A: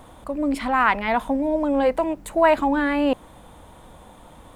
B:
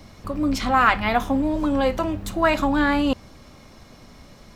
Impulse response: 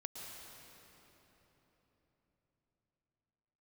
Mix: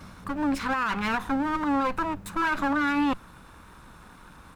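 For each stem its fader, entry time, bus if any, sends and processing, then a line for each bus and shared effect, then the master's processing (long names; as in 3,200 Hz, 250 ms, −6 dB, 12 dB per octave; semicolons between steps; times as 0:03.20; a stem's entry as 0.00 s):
−3.5 dB, 0.00 s, no send, lower of the sound and its delayed copy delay 0.8 ms; parametric band 1,500 Hz +7 dB 0.84 octaves
−1.5 dB, 5.3 ms, polarity flipped, no send, parametric band 180 Hz +14.5 dB 0.23 octaves; automatic ducking −12 dB, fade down 0.40 s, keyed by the first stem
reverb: not used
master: brickwall limiter −18 dBFS, peak gain reduction 11 dB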